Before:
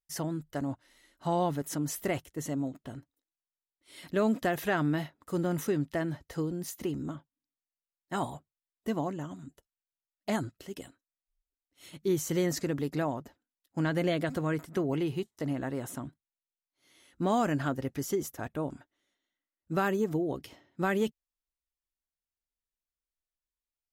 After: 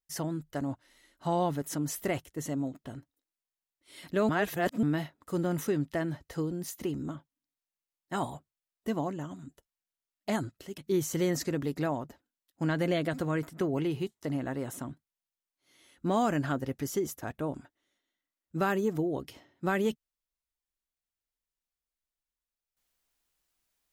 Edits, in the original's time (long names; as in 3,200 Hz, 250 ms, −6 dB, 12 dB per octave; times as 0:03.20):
0:04.29–0:04.83: reverse
0:10.78–0:11.94: remove